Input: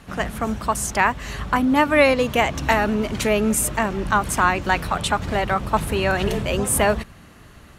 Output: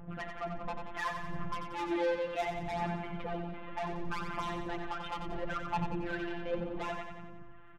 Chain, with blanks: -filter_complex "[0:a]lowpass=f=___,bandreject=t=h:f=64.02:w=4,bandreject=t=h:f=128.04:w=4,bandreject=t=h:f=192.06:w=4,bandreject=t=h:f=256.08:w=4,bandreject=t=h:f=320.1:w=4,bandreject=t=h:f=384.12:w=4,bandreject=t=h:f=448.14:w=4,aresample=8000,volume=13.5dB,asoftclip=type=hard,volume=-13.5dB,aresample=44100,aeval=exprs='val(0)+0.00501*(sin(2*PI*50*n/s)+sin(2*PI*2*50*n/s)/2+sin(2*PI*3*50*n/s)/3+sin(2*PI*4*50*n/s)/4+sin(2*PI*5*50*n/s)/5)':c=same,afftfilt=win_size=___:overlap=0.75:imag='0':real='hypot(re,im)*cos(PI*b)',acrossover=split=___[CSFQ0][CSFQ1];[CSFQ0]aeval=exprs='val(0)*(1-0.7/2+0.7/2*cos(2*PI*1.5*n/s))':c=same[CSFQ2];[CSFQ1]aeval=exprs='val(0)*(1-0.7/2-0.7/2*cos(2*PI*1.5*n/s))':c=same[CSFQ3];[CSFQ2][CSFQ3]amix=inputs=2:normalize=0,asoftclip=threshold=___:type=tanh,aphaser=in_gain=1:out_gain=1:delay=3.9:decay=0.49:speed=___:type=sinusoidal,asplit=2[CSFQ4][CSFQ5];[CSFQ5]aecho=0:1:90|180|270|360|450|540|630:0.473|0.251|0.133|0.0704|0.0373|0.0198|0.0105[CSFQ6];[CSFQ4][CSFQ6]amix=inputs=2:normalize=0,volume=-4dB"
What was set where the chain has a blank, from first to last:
1.7k, 1024, 1000, -28dB, 0.69